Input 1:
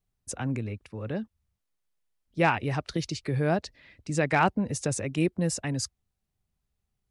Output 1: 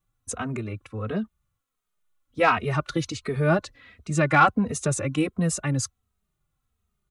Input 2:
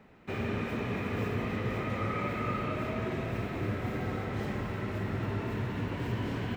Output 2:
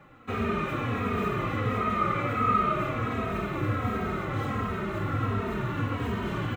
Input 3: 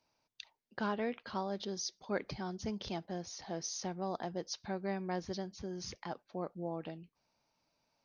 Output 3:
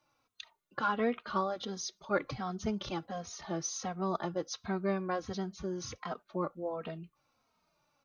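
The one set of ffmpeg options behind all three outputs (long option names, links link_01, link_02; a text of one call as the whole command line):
ffmpeg -i in.wav -filter_complex "[0:a]superequalizer=10b=2.51:14b=0.562,acontrast=66,asplit=2[link_01][link_02];[link_02]adelay=2.9,afreqshift=-1.4[link_03];[link_01][link_03]amix=inputs=2:normalize=1" out.wav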